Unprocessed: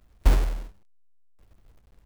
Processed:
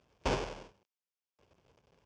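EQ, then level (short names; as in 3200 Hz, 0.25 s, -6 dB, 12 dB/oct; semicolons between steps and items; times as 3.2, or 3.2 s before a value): speaker cabinet 200–5800 Hz, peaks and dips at 210 Hz -8 dB, 300 Hz -8 dB, 720 Hz -5 dB, 1300 Hz -7 dB, 1900 Hz -9 dB, 4000 Hz -9 dB; +3.0 dB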